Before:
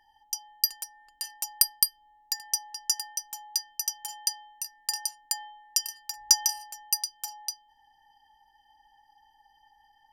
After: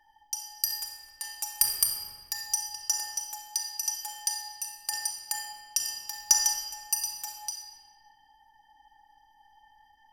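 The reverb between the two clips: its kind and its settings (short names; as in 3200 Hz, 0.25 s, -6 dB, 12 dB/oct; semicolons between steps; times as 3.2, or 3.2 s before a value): shoebox room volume 2500 m³, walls mixed, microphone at 2.5 m; gain -2.5 dB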